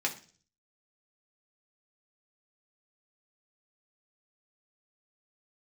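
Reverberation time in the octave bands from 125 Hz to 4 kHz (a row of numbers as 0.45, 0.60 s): 0.75, 0.55, 0.45, 0.35, 0.40, 0.50 s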